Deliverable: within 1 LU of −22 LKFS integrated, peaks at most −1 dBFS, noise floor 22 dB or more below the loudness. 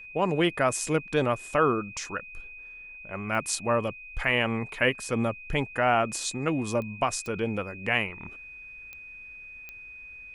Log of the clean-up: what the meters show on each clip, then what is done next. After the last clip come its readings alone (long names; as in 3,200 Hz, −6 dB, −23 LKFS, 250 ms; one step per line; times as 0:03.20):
number of clicks 5; interfering tone 2,500 Hz; level of the tone −42 dBFS; integrated loudness −27.5 LKFS; sample peak −10.0 dBFS; target loudness −22.0 LKFS
→ click removal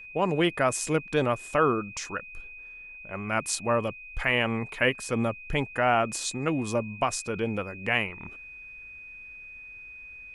number of clicks 0; interfering tone 2,500 Hz; level of the tone −42 dBFS
→ notch filter 2,500 Hz, Q 30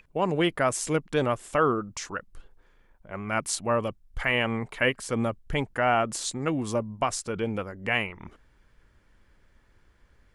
interfering tone none found; integrated loudness −27.5 LKFS; sample peak −10.0 dBFS; target loudness −22.0 LKFS
→ level +5.5 dB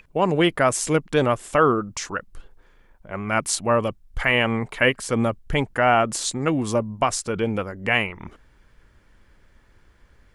integrated loudness −22.5 LKFS; sample peak −4.5 dBFS; background noise floor −57 dBFS